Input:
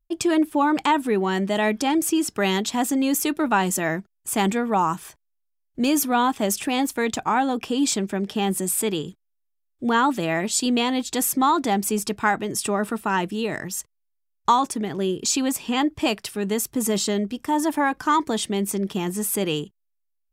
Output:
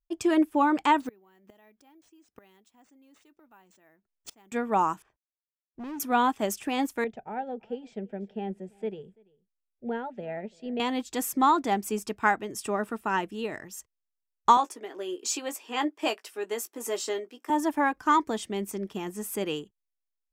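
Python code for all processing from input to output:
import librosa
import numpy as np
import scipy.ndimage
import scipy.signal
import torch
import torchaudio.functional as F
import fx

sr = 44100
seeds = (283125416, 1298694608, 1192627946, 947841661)

y = fx.chain(x, sr, fx.gate_flip(shuts_db=-17.0, range_db=-26),
    fx.resample_bad(factor=3, down='none', up='hold'), at=(1.0, 4.52))
y = fx.chain(y, sr, fx.law_mismatch(coded='A'),
    fx.spacing_loss(db_at_10k=37),
    fx.clip_hard(threshold_db=-26.5), at=(5.02, 6.0))
y = fx.chain(y, sr, fx.lowpass(hz=1500.0, slope=12),
    fx.fixed_phaser(hz=300.0, stages=6),
    fx.echo_single(ms=337, db=-23.0), at=(7.04, 10.8))
y = fx.chain(y, sr, fx.highpass(hz=320.0, slope=24),
    fx.doubler(ms=17.0, db=-8.0), at=(14.57, 17.5))
y = fx.graphic_eq_15(y, sr, hz=(160, 4000, 10000), db=(-7, -5, -5))
y = fx.upward_expand(y, sr, threshold_db=-35.0, expansion=1.5)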